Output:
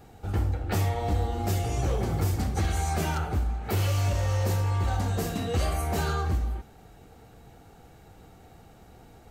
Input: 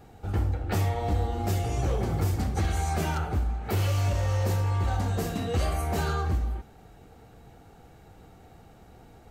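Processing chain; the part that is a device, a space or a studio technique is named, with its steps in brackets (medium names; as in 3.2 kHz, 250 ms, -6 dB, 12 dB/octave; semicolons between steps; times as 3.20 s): exciter from parts (in parallel at -6 dB: high-pass 4.7 kHz 6 dB/octave + saturation -39 dBFS, distortion -15 dB)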